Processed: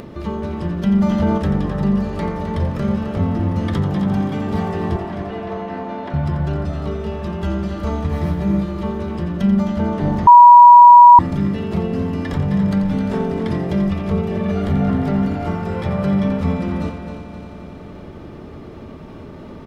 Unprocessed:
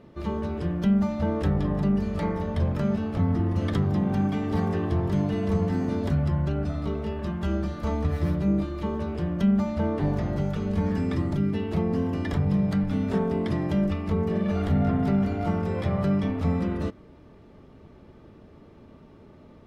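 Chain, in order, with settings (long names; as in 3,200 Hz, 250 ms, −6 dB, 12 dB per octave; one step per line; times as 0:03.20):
0:04.96–0:06.14: band-pass filter 430–2,900 Hz
echo machine with several playback heads 87 ms, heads first and third, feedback 65%, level −10.5 dB
upward compression, threshold −30 dBFS
far-end echo of a speakerphone 280 ms, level −8 dB
0:00.93–0:01.38: envelope flattener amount 50%
0:10.27–0:11.19: beep over 966 Hz −6 dBFS
level +4.5 dB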